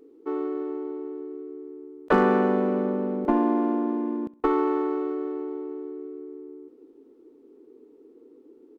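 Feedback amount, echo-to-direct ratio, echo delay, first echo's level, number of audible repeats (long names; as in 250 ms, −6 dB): 40%, −20.5 dB, 65 ms, −21.0 dB, 2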